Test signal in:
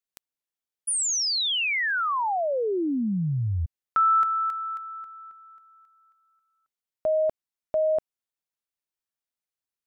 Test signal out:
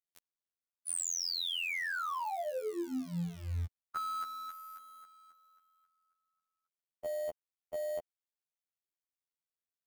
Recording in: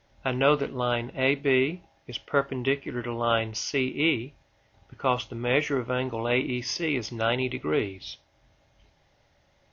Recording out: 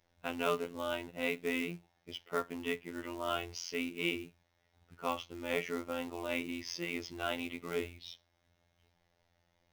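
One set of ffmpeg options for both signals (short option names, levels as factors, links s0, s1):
-af "acrusher=bits=4:mode=log:mix=0:aa=0.000001,afftfilt=real='hypot(re,im)*cos(PI*b)':imag='0':win_size=2048:overlap=0.75,volume=0.447"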